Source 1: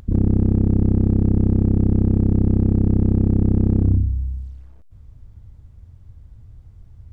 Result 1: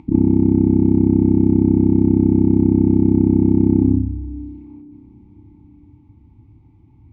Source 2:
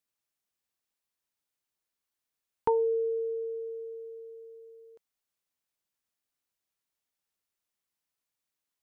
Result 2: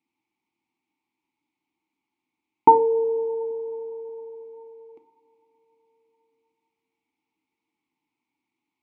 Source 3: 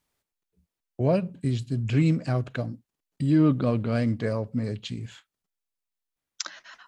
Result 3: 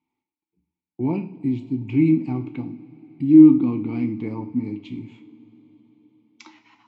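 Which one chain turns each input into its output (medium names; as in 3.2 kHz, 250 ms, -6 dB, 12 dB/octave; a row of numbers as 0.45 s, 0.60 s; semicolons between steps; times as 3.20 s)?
vowel filter u; bass shelf 300 Hz +6.5 dB; two-slope reverb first 0.42 s, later 5 s, from -22 dB, DRR 6 dB; peak normalisation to -1.5 dBFS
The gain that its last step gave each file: +14.0 dB, +22.5 dB, +10.0 dB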